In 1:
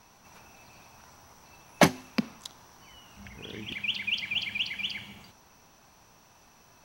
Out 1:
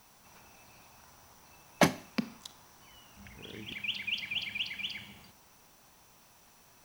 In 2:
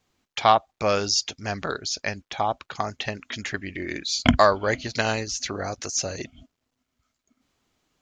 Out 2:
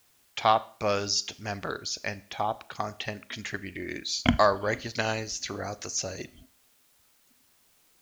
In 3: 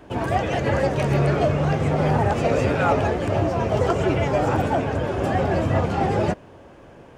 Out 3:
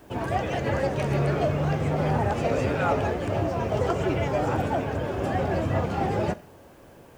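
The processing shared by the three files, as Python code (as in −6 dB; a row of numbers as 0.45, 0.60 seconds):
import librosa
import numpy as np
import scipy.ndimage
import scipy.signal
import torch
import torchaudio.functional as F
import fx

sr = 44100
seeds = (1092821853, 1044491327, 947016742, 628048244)

y = fx.quant_dither(x, sr, seeds[0], bits=10, dither='triangular')
y = fx.rev_schroeder(y, sr, rt60_s=0.46, comb_ms=27, drr_db=16.5)
y = y * librosa.db_to_amplitude(-4.5)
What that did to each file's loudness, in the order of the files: −4.5, −4.5, −4.5 LU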